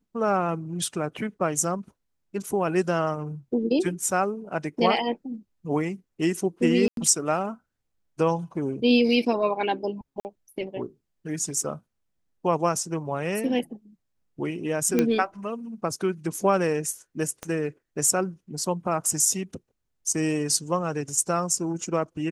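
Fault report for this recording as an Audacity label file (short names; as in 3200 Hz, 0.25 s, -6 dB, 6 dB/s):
6.880000	6.970000	gap 92 ms
10.200000	10.250000	gap 49 ms
14.990000	14.990000	pop -9 dBFS
17.430000	17.430000	pop -18 dBFS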